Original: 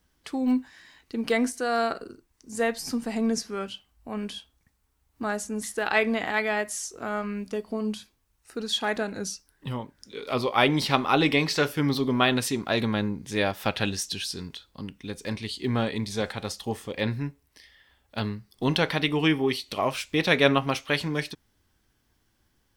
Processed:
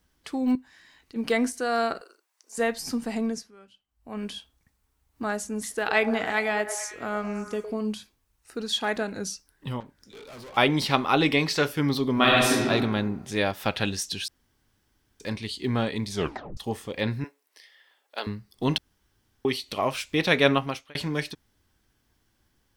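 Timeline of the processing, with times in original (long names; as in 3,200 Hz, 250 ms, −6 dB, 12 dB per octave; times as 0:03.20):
0:00.55–0:01.16: downward compressor 1.5 to 1, threshold −56 dBFS
0:02.01–0:02.58: high-pass filter 570 Hz 24 dB per octave
0:03.15–0:04.25: duck −19.5 dB, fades 0.37 s
0:05.60–0:07.74: echo through a band-pass that steps 108 ms, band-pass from 530 Hz, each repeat 0.7 octaves, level −7 dB
0:09.80–0:10.57: tube saturation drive 42 dB, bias 0.35
0:12.13–0:12.69: thrown reverb, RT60 1.3 s, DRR −4 dB
0:14.28–0:15.20: fill with room tone
0:16.14: tape stop 0.43 s
0:17.24–0:18.27: high-pass filter 390 Hz 24 dB per octave
0:18.78–0:19.45: fill with room tone
0:20.54–0:20.95: fade out linear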